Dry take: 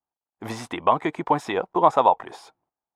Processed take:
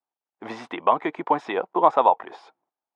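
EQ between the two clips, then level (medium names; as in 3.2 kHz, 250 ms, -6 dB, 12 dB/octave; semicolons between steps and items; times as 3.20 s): band-pass 260–3400 Hz; 0.0 dB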